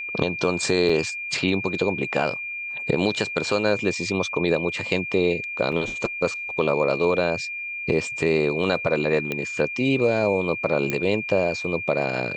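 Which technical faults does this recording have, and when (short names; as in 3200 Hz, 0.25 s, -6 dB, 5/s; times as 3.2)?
tone 2400 Hz -29 dBFS
0.89 gap 4.5 ms
5.72 gap 4.8 ms
9.32 pop -13 dBFS
10.9 pop -10 dBFS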